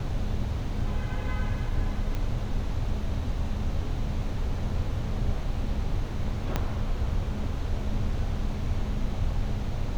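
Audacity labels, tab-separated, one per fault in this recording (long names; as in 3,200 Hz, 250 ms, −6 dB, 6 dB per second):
2.150000	2.150000	click −20 dBFS
6.560000	6.560000	click −12 dBFS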